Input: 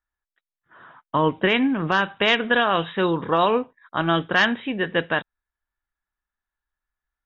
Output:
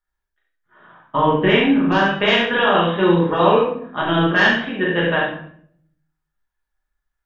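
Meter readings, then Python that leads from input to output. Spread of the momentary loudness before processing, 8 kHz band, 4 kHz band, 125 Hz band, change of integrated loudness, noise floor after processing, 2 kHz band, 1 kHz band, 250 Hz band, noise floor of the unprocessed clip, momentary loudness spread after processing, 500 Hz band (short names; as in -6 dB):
7 LU, n/a, +3.5 dB, +7.0 dB, +4.5 dB, -80 dBFS, +4.0 dB, +4.0 dB, +6.0 dB, under -85 dBFS, 7 LU, +6.0 dB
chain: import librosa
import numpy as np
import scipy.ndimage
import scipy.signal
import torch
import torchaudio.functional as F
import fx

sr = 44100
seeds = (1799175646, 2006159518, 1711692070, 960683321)

p1 = fx.level_steps(x, sr, step_db=22)
p2 = x + (p1 * 10.0 ** (-1.0 / 20.0))
p3 = fx.room_early_taps(p2, sr, ms=(40, 70), db=(-6.0, -6.0))
p4 = fx.room_shoebox(p3, sr, seeds[0], volume_m3=100.0, walls='mixed', distance_m=1.3)
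y = p4 * 10.0 ** (-7.0 / 20.0)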